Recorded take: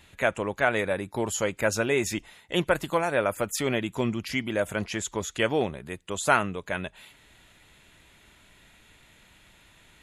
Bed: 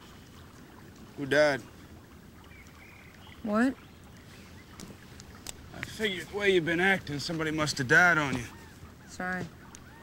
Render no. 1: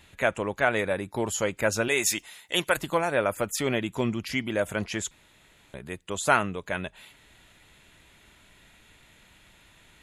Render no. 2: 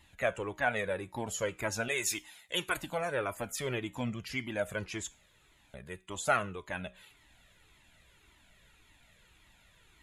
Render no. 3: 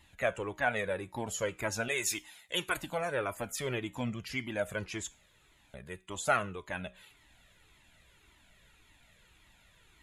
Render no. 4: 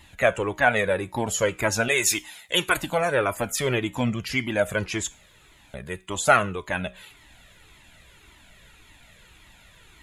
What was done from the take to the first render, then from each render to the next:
1.88–2.77 tilt +3 dB/oct; 5.11–5.74 room tone
resonator 62 Hz, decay 0.33 s, harmonics all, mix 40%; cascading flanger falling 1.8 Hz
nothing audible
gain +10.5 dB

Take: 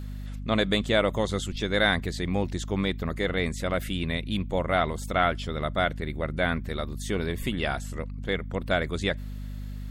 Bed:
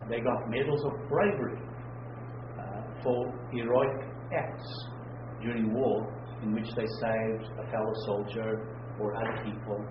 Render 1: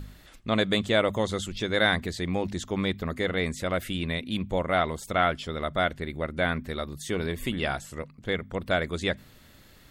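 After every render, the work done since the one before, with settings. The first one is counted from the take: de-hum 50 Hz, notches 5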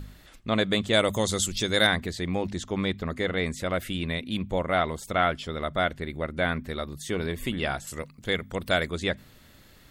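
0.93–1.87 tone controls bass +2 dB, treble +14 dB; 2.48–3.5 LPF 11000 Hz; 7.87–8.87 high shelf 3800 Hz +12 dB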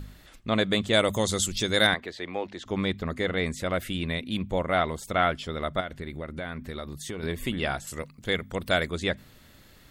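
1.94–2.66 three-band isolator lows -17 dB, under 330 Hz, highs -15 dB, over 4300 Hz; 5.8–7.23 compressor, threshold -30 dBFS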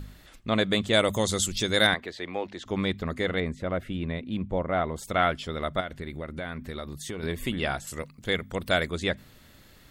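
3.4–4.96 LPF 1100 Hz 6 dB/oct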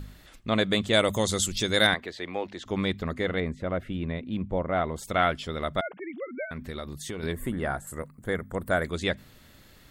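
3.12–4.76 high shelf 3600 Hz -6 dB; 5.81–6.51 sine-wave speech; 7.33–8.85 band shelf 3800 Hz -15 dB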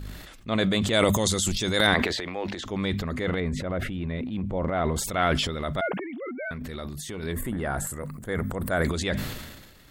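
transient shaper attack -3 dB, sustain +10 dB; sustainer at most 44 dB/s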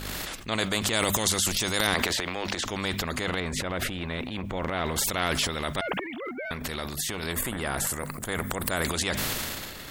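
spectral compressor 2:1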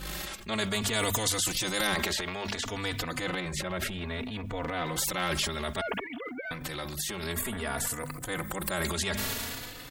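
overloaded stage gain 13.5 dB; endless flanger 3.4 ms +0.59 Hz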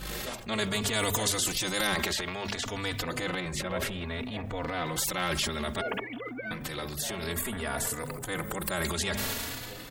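add bed -13 dB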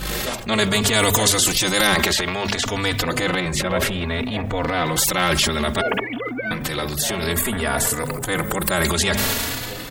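gain +11 dB

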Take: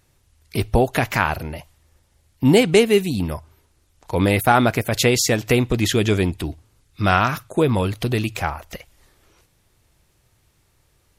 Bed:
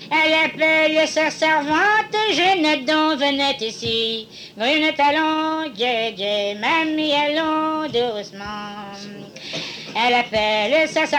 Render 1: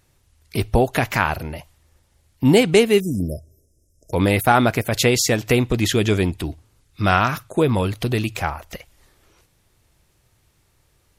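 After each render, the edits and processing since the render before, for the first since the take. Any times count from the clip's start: 3–4.13 brick-wall FIR band-stop 680–5000 Hz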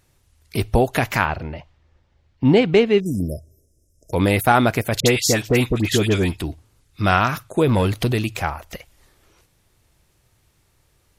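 1.25–3.06 air absorption 190 m; 5–6.4 dispersion highs, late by 61 ms, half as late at 1600 Hz; 7.67–8.12 sample leveller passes 1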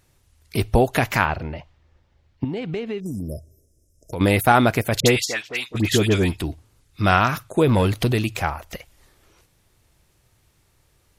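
2.44–4.21 compressor, threshold -25 dBFS; 5.24–5.74 band-pass 1500 Hz -> 5200 Hz, Q 0.93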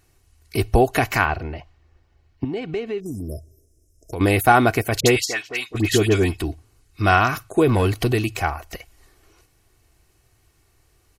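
notch 3500 Hz, Q 8.6; comb 2.7 ms, depth 45%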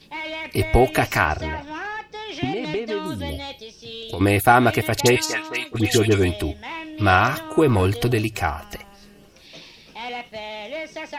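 add bed -14.5 dB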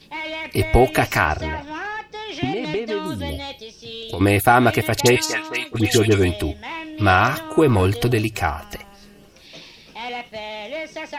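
gain +1.5 dB; limiter -2 dBFS, peak gain reduction 2 dB

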